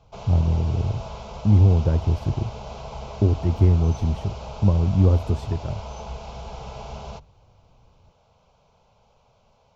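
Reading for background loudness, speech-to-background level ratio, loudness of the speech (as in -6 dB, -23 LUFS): -37.0 LUFS, 15.0 dB, -22.0 LUFS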